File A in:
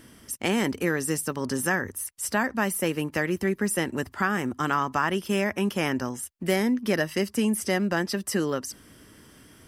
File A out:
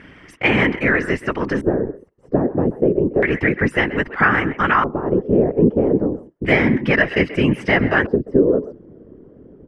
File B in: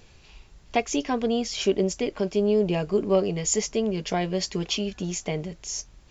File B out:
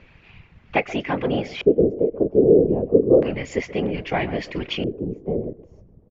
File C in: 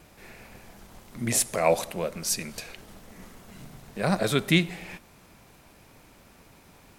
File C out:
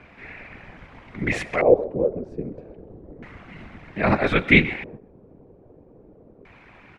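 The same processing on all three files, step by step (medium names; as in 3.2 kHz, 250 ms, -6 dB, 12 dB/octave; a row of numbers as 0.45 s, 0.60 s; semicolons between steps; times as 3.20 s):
speakerphone echo 130 ms, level -14 dB; whisper effect; LFO low-pass square 0.31 Hz 450–2200 Hz; peak normalisation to -1.5 dBFS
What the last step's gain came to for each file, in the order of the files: +7.0 dB, +1.0 dB, +3.5 dB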